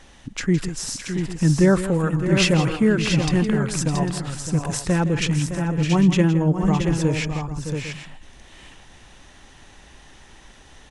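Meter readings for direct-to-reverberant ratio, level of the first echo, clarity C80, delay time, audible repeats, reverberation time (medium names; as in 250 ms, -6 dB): no reverb, -12.5 dB, no reverb, 164 ms, 4, no reverb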